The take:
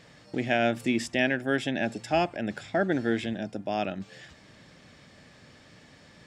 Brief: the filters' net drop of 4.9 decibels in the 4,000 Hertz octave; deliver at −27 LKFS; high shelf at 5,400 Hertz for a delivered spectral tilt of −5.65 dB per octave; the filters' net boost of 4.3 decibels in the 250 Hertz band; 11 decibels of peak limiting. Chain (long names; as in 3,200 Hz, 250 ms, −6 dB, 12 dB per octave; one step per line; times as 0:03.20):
parametric band 250 Hz +5 dB
parametric band 4,000 Hz −5 dB
high-shelf EQ 5,400 Hz −5.5 dB
level +4.5 dB
brickwall limiter −16 dBFS